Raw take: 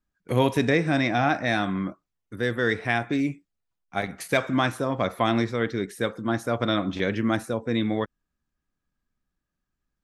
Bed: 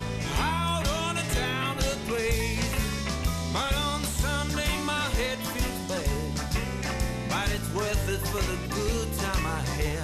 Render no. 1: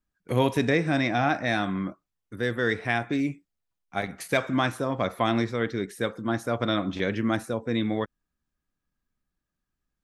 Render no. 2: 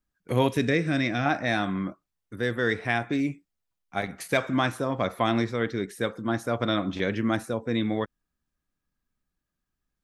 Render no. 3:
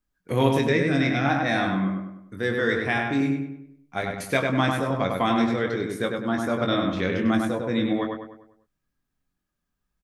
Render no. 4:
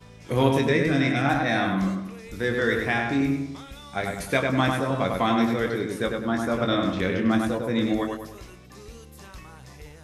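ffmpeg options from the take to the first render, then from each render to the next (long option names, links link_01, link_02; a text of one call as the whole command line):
ffmpeg -i in.wav -af "volume=-1.5dB" out.wav
ffmpeg -i in.wav -filter_complex "[0:a]asettb=1/sr,asplit=3[link_01][link_02][link_03];[link_01]atrim=end=0.484[link_04];[link_02]atrim=start=0.48:end=1.26,asetpts=PTS-STARTPTS,afade=type=in:duration=0.004:curve=qsin,afade=type=out:start_time=0.776:duration=0.004:curve=qsin,equalizer=frequency=850:width_type=o:width=0.62:gain=-12[link_05];[link_03]atrim=start=1.256[link_06];[link_04][link_05]acrossfade=duration=0.004:curve1=hsin:curve2=qsin[link_07];[link_07][link_06]acrossfade=duration=0.004:curve1=qsin:curve2=hsin" out.wav
ffmpeg -i in.wav -filter_complex "[0:a]asplit=2[link_01][link_02];[link_02]adelay=22,volume=-6dB[link_03];[link_01][link_03]amix=inputs=2:normalize=0,asplit=2[link_04][link_05];[link_05]adelay=99,lowpass=frequency=2800:poles=1,volume=-3dB,asplit=2[link_06][link_07];[link_07]adelay=99,lowpass=frequency=2800:poles=1,volume=0.46,asplit=2[link_08][link_09];[link_09]adelay=99,lowpass=frequency=2800:poles=1,volume=0.46,asplit=2[link_10][link_11];[link_11]adelay=99,lowpass=frequency=2800:poles=1,volume=0.46,asplit=2[link_12][link_13];[link_13]adelay=99,lowpass=frequency=2800:poles=1,volume=0.46,asplit=2[link_14][link_15];[link_15]adelay=99,lowpass=frequency=2800:poles=1,volume=0.46[link_16];[link_04][link_06][link_08][link_10][link_12][link_14][link_16]amix=inputs=7:normalize=0" out.wav
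ffmpeg -i in.wav -i bed.wav -filter_complex "[1:a]volume=-16dB[link_01];[0:a][link_01]amix=inputs=2:normalize=0" out.wav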